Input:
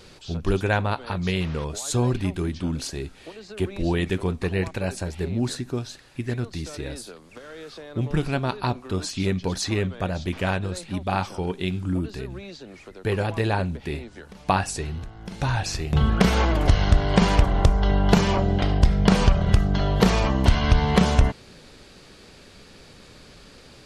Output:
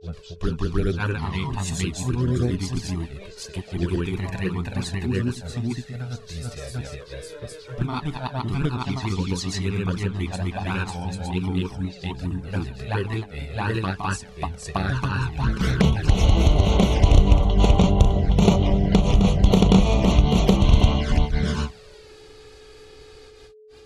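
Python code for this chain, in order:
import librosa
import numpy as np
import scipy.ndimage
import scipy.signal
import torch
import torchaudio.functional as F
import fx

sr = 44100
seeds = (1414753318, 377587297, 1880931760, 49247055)

y = fx.granulator(x, sr, seeds[0], grain_ms=217.0, per_s=18.0, spray_ms=667.0, spread_st=0)
y = fx.env_flanger(y, sr, rest_ms=2.6, full_db=-20.0)
y = y + 10.0 ** (-53.0 / 20.0) * np.sin(2.0 * np.pi * 430.0 * np.arange(len(y)) / sr)
y = y * 10.0 ** (6.5 / 20.0)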